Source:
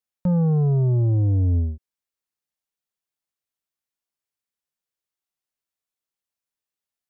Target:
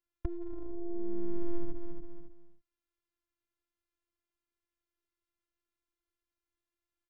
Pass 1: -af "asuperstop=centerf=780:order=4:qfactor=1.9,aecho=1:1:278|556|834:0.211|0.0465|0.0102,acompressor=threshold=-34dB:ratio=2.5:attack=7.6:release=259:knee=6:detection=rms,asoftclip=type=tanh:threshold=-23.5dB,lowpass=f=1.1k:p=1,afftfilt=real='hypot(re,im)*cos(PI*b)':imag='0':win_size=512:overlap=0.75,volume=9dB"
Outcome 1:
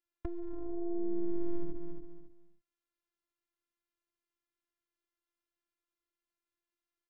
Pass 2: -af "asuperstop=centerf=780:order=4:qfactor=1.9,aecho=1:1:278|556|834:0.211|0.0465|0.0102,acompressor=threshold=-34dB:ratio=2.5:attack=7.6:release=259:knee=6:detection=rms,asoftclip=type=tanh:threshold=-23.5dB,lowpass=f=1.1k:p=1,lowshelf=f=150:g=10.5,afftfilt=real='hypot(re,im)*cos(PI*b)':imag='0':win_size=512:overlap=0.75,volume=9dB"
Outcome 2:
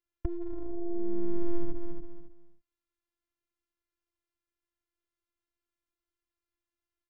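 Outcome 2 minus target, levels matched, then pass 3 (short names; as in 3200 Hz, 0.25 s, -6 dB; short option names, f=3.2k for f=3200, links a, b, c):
compressor: peak gain reduction -4 dB
-af "asuperstop=centerf=780:order=4:qfactor=1.9,aecho=1:1:278|556|834:0.211|0.0465|0.0102,acompressor=threshold=-41dB:ratio=2.5:attack=7.6:release=259:knee=6:detection=rms,asoftclip=type=tanh:threshold=-23.5dB,lowpass=f=1.1k:p=1,lowshelf=f=150:g=10.5,afftfilt=real='hypot(re,im)*cos(PI*b)':imag='0':win_size=512:overlap=0.75,volume=9dB"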